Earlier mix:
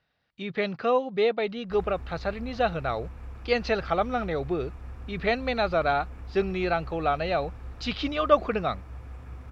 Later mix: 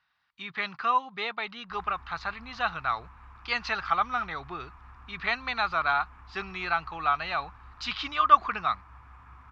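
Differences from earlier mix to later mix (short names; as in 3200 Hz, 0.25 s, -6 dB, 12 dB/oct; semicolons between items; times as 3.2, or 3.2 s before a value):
background: add LPF 1700 Hz 6 dB/oct; master: add resonant low shelf 740 Hz -11.5 dB, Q 3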